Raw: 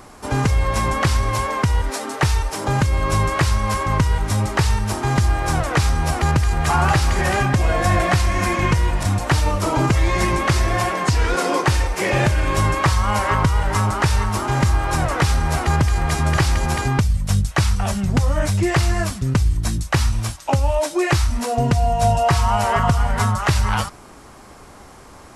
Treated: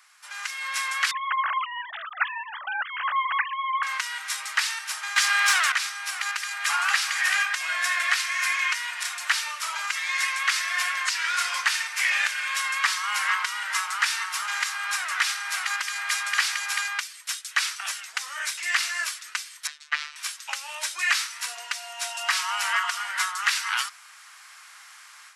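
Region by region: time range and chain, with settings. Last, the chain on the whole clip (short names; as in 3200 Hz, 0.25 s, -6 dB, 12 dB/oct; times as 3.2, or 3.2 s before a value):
1.11–3.83 sine-wave speech + bell 2300 Hz -11.5 dB 1 oct
5.16–5.72 HPF 190 Hz + overdrive pedal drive 20 dB, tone 7900 Hz, clips at -4.5 dBFS
19.67–20.16 robotiser 149 Hz + LPF 3600 Hz
whole clip: HPF 1500 Hz 24 dB/oct; high shelf 5800 Hz -5 dB; AGC gain up to 10 dB; gain -5.5 dB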